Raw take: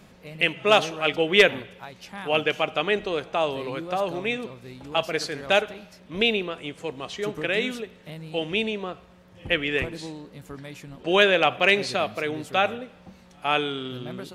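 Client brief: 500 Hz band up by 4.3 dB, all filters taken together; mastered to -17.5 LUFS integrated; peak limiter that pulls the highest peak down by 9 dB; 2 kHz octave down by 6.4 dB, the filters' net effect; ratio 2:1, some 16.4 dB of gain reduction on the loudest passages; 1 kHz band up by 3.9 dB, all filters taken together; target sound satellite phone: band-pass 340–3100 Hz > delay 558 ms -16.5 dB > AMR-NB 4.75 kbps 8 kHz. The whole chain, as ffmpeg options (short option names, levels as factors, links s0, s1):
-af "equalizer=f=500:t=o:g=5.5,equalizer=f=1000:t=o:g=5.5,equalizer=f=2000:t=o:g=-9,acompressor=threshold=0.01:ratio=2,alimiter=level_in=1.33:limit=0.0631:level=0:latency=1,volume=0.75,highpass=340,lowpass=3100,aecho=1:1:558:0.15,volume=14.1" -ar 8000 -c:a libopencore_amrnb -b:a 4750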